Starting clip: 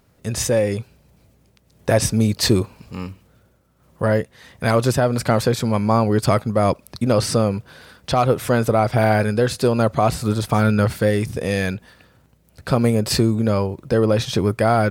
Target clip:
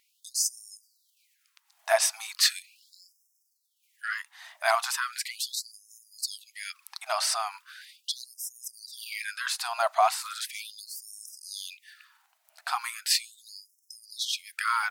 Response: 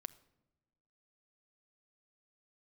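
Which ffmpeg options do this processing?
-filter_complex "[0:a]asettb=1/sr,asplit=3[a][b][c];[a]atrim=end=2.624[d];[b]atrim=start=2.62:end=4.18,asetpts=PTS-STARTPTS,afade=t=in:d=0.004:c=qsin,afade=t=out:st=1.556:d=0.004:c=qsin,acrossover=split=7300[e][f];[f]acompressor=threshold=-59dB:ratio=4:attack=1:release=60[g];[e][g]amix=inputs=2:normalize=0[h];[c]atrim=start=4.176[i];[d][h]acrossfade=d=0.004:c1=hsin:c2=qsin[j];[j][i]acrossfade=d=0.004:c1=qsin:c2=hsin,afftfilt=real='re*gte(b*sr/1024,600*pow(5200/600,0.5+0.5*sin(2*PI*0.38*pts/sr)))':imag='im*gte(b*sr/1024,600*pow(5200/600,0.5+0.5*sin(2*PI*0.38*pts/sr)))':win_size=1024:overlap=0.75,volume=-1.5dB"

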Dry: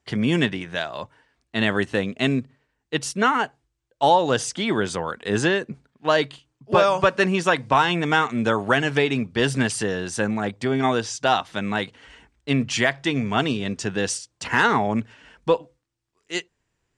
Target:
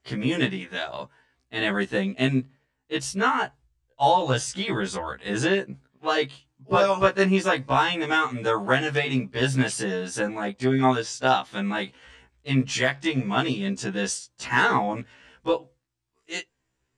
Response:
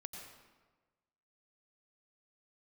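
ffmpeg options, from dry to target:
-filter_complex "[0:a]asplit=3[a][b][c];[a]afade=t=out:st=3.02:d=0.02[d];[b]asubboost=boost=4.5:cutoff=110,afade=t=in:st=3.02:d=0.02,afade=t=out:st=5.28:d=0.02[e];[c]afade=t=in:st=5.28:d=0.02[f];[d][e][f]amix=inputs=3:normalize=0,afftfilt=real='re*1.73*eq(mod(b,3),0)':imag='im*1.73*eq(mod(b,3),0)':win_size=2048:overlap=0.75"

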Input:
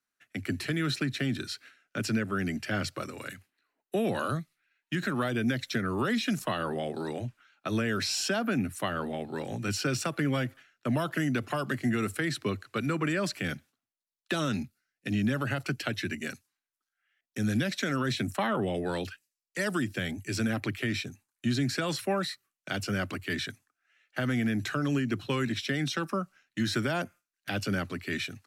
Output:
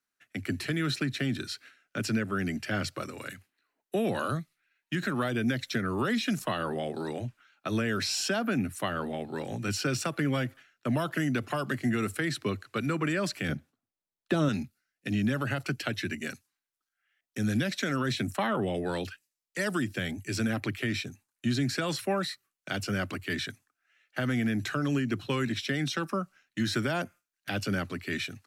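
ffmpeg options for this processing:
-filter_complex "[0:a]asettb=1/sr,asplit=3[a][b][c];[a]atrim=end=13.494[d];[b]atrim=start=13.49:end=14.49,asetpts=PTS-STARTPTS,afade=t=in:d=0.004:c=qsin,afade=t=out:st=0.996:d=0.004:c=qsin,tiltshelf=f=1.1k:g=6.5[e];[c]atrim=start=14.486[f];[d][e]acrossfade=d=0.004:c1=hsin:c2=qsin[g];[g][f]acrossfade=d=0.004:c1=qsin:c2=hsin"

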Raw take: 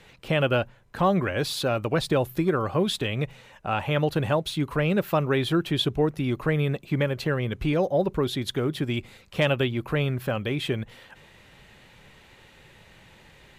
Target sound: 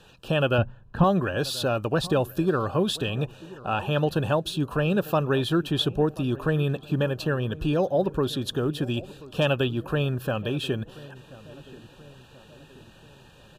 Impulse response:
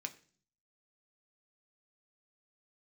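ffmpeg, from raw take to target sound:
-filter_complex "[0:a]asettb=1/sr,asplit=3[a][b][c];[a]atrim=end=0.584[d];[b]atrim=start=0.58:end=1.04,asetpts=PTS-STARTPTS,afade=t=in:d=0.004:c=qsin,afade=t=out:st=0.456:d=0.004:c=qsin,bass=f=250:g=10,treble=f=4k:g=-13[e];[c]atrim=start=1.036[f];[d][e]acrossfade=d=0.004:c1=hsin:c2=qsin[g];[g][f]acrossfade=d=0.004:c1=qsin:c2=hsin,asuperstop=centerf=2100:order=12:qfactor=3.5,asplit=2[h][i];[i]adelay=1033,lowpass=f=1.4k:p=1,volume=-19dB,asplit=2[j][k];[k]adelay=1033,lowpass=f=1.4k:p=1,volume=0.55,asplit=2[l][m];[m]adelay=1033,lowpass=f=1.4k:p=1,volume=0.55,asplit=2[n][o];[o]adelay=1033,lowpass=f=1.4k:p=1,volume=0.55,asplit=2[p][q];[q]adelay=1033,lowpass=f=1.4k:p=1,volume=0.55[r];[h][j][l][n][p][r]amix=inputs=6:normalize=0"

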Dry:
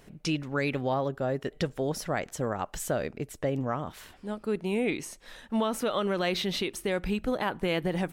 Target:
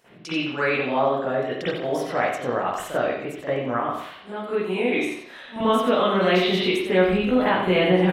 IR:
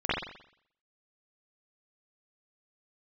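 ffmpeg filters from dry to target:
-filter_complex "[0:a]asetnsamples=n=441:p=0,asendcmd='5.56 highpass f 130',highpass=f=480:p=1,aecho=1:1:90:0.376[a];[1:a]atrim=start_sample=2205[b];[a][b]afir=irnorm=-1:irlink=0,volume=-3dB"

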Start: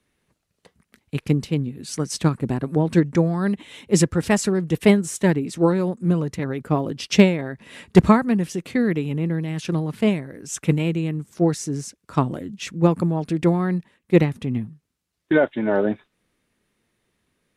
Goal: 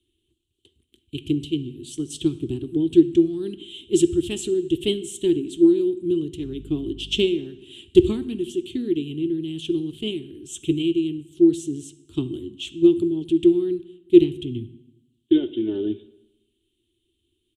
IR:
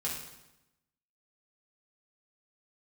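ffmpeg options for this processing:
-filter_complex "[0:a]firequalizer=gain_entry='entry(100,0);entry(170,-20);entry(350,8);entry(510,-28);entry(1100,-28);entry(2000,-25);entry(3100,8);entry(4900,-17);entry(7800,-3);entry(12000,-8)':delay=0.05:min_phase=1,asettb=1/sr,asplit=3[a][b][c];[a]atrim=end=6.414[d];[b]atrim=start=6.41:end=7.25,asetpts=PTS-STARTPTS,afade=t=in:d=0.004:c=qsin,afade=t=out:st=0.836:d=0.004:c=qsin,aeval=exprs='val(0)+0.00891*(sin(2*PI*50*n/s)+sin(2*PI*2*50*n/s)/2+sin(2*PI*3*50*n/s)/3+sin(2*PI*4*50*n/s)/4+sin(2*PI*5*50*n/s)/5)':c=same[e];[c]atrim=start=7.246[f];[d][e]acrossfade=d=0.004:c1=hsin:c2=qsin[g];[g][f]acrossfade=d=0.004:c1=qsin:c2=hsin,asplit=2[h][i];[1:a]atrim=start_sample=2205,lowpass=8.7k[j];[i][j]afir=irnorm=-1:irlink=0,volume=-14dB[k];[h][k]amix=inputs=2:normalize=0"

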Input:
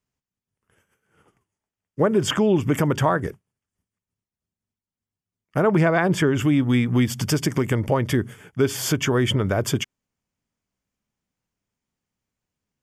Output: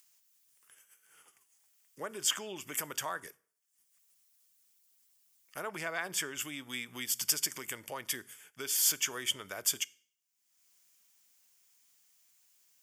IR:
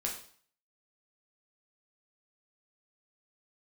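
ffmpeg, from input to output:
-filter_complex "[0:a]aderivative,acompressor=mode=upward:threshold=-51dB:ratio=2.5,asplit=2[a][b];[1:a]atrim=start_sample=2205[c];[b][c]afir=irnorm=-1:irlink=0,volume=-19.5dB[d];[a][d]amix=inputs=2:normalize=0"

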